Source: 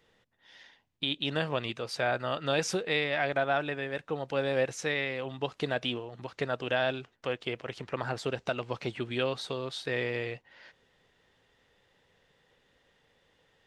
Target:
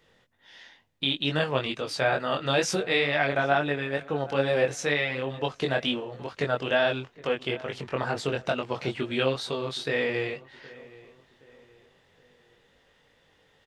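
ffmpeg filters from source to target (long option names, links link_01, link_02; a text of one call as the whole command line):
ffmpeg -i in.wav -filter_complex "[0:a]flanger=delay=20:depth=2.9:speed=2.2,asplit=2[link_01][link_02];[link_02]adelay=769,lowpass=frequency=2200:poles=1,volume=-20dB,asplit=2[link_03][link_04];[link_04]adelay=769,lowpass=frequency=2200:poles=1,volume=0.42,asplit=2[link_05][link_06];[link_06]adelay=769,lowpass=frequency=2200:poles=1,volume=0.42[link_07];[link_01][link_03][link_05][link_07]amix=inputs=4:normalize=0,volume=7.5dB" out.wav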